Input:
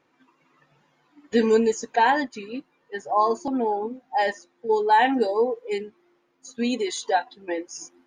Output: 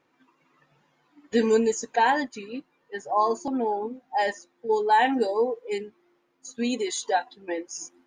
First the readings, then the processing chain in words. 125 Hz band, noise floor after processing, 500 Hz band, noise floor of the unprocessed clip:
can't be measured, −70 dBFS, −2.0 dB, −68 dBFS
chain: dynamic equaliser 7,700 Hz, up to +6 dB, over −54 dBFS, Q 2
level −2 dB

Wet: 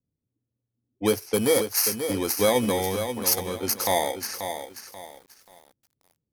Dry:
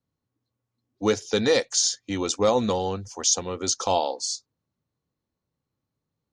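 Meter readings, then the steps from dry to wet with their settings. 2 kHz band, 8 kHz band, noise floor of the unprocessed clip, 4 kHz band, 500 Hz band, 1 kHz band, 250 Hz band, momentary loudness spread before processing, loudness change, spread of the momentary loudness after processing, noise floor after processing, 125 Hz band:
+1.5 dB, −2.5 dB, −85 dBFS, −2.5 dB, 0.0 dB, −1.0 dB, +0.5 dB, 7 LU, 0.0 dB, 14 LU, −85 dBFS, 0.0 dB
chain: samples in bit-reversed order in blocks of 16 samples
low-pass that shuts in the quiet parts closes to 450 Hz, open at −22.5 dBFS
feedback echo at a low word length 535 ms, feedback 35%, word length 8 bits, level −8 dB

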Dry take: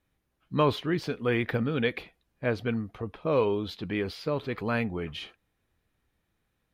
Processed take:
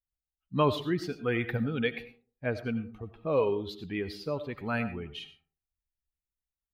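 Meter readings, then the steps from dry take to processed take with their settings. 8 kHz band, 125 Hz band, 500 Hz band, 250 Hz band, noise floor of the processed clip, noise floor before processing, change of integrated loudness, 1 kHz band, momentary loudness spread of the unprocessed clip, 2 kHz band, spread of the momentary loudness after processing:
can't be measured, −2.5 dB, −2.0 dB, −2.5 dB, below −85 dBFS, −78 dBFS, −2.0 dB, −1.5 dB, 10 LU, −2.5 dB, 14 LU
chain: spectral dynamics exaggerated over time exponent 1.5
comb and all-pass reverb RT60 0.42 s, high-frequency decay 0.4×, pre-delay 50 ms, DRR 12 dB

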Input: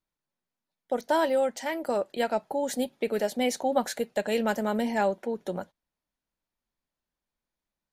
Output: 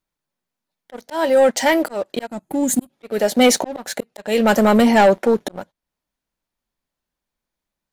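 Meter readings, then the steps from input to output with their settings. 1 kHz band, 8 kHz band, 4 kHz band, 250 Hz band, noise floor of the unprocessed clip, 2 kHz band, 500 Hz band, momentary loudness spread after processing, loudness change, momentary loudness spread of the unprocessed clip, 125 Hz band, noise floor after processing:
+9.5 dB, +14.5 dB, +12.0 dB, +12.5 dB, below −85 dBFS, +11.0 dB, +9.5 dB, 16 LU, +11.5 dB, 8 LU, +12.0 dB, −85 dBFS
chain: volume swells 431 ms
gain on a spectral selection 0:02.27–0:02.90, 350–6,200 Hz −14 dB
leveller curve on the samples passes 2
level +9 dB

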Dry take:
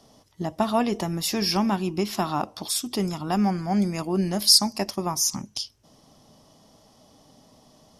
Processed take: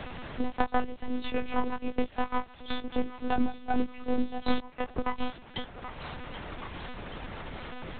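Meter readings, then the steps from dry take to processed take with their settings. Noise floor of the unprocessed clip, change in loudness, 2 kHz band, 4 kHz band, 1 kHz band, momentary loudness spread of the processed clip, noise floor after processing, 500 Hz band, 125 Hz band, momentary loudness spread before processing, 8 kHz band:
−58 dBFS, −10.5 dB, +0.5 dB, −17.5 dB, −4.0 dB, 11 LU, −50 dBFS, −6.0 dB, −13.0 dB, 14 LU, below −40 dB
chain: spectral dynamics exaggerated over time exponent 2
transient designer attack +9 dB, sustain −8 dB
in parallel at 0 dB: downward compressor 6 to 1, threshold −34 dBFS, peak gain reduction 24.5 dB
on the sum: half-wave rectification
chorus effect 0.99 Hz, delay 19.5 ms, depth 6 ms
background noise pink −55 dBFS
log-companded quantiser 6 bits
on a send: feedback echo with a high-pass in the loop 777 ms, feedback 62%, high-pass 880 Hz, level −17.5 dB
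on the sum: one-pitch LPC vocoder at 8 kHz 250 Hz
multiband upward and downward compressor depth 70%

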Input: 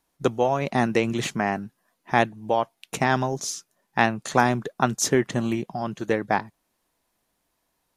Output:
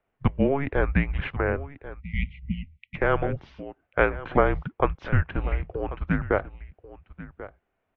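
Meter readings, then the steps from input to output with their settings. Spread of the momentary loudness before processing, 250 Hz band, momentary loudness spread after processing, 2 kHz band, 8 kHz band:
9 LU, −3.0 dB, 19 LU, −2.5 dB, below −40 dB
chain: single-sideband voice off tune −280 Hz 170–2,900 Hz
single-tap delay 1,089 ms −16 dB
time-frequency box erased 0:02.00–0:02.96, 240–1,900 Hz

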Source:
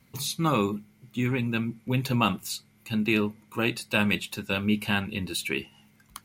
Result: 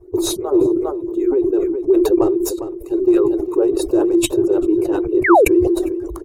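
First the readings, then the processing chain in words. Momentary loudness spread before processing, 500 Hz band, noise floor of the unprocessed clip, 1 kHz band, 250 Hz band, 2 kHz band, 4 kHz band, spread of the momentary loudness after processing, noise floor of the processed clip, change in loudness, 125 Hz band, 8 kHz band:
9 LU, +19.0 dB, −61 dBFS, +10.0 dB, +12.0 dB, +2.0 dB, 0.0 dB, 8 LU, −32 dBFS, +11.0 dB, −4.5 dB, +9.0 dB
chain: harmonic-percussive split with one part muted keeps percussive
hollow resonant body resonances 360/3,800 Hz, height 15 dB, ringing for 50 ms
in parallel at −8 dB: sine wavefolder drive 11 dB, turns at −8 dBFS
on the sum: downward compressor 2.5 to 1, threshold −34 dBFS, peak gain reduction 13.5 dB
drawn EQ curve 120 Hz 0 dB, 220 Hz −28 dB, 340 Hz +10 dB, 2,200 Hz −25 dB, 6,800 Hz −19 dB, 14,000 Hz −26 dB
on a send: single-tap delay 404 ms −14 dB
on the sum: sound drawn into the spectrogram fall, 0:05.24–0:05.45, 350–2,300 Hz −22 dBFS
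parametric band 3,500 Hz −12.5 dB 1.5 octaves
level that may fall only so fast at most 31 dB per second
level +9 dB

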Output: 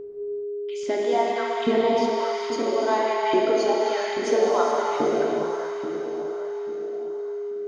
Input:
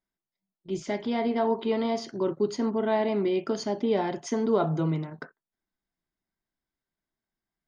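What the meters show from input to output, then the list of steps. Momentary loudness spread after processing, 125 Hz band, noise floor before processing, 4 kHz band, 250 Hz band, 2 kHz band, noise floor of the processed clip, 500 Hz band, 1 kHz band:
10 LU, below −10 dB, below −85 dBFS, +7.0 dB, −1.0 dB, +8.5 dB, −31 dBFS, +6.5 dB, +8.5 dB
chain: feedback delay with all-pass diffusion 492 ms, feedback 53%, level −5.5 dB
auto-filter high-pass saw up 1.2 Hz 270–2,800 Hz
steady tone 410 Hz −33 dBFS
reverb whose tail is shaped and stops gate 450 ms flat, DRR −2 dB

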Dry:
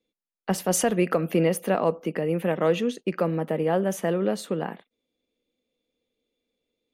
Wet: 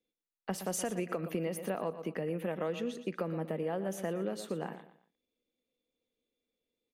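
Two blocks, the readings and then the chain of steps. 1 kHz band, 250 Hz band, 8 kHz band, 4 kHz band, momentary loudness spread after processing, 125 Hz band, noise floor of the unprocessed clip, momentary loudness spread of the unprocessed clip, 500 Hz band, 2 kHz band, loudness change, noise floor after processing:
−11.5 dB, −11.0 dB, −11.0 dB, −10.5 dB, 5 LU, −11.0 dB, below −85 dBFS, 7 LU, −11.0 dB, −11.0 dB, −11.5 dB, below −85 dBFS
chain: repeating echo 118 ms, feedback 32%, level −13.5 dB
downward compressor, threshold −23 dBFS, peak gain reduction 7 dB
level −7.5 dB

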